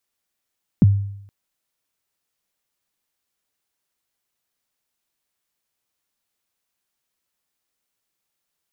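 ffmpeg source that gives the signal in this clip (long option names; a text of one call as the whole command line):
ffmpeg -f lavfi -i "aevalsrc='0.473*pow(10,-3*t/0.74)*sin(2*PI*(260*0.026/log(100/260)*(exp(log(100/260)*min(t,0.026)/0.026)-1)+100*max(t-0.026,0)))':duration=0.47:sample_rate=44100" out.wav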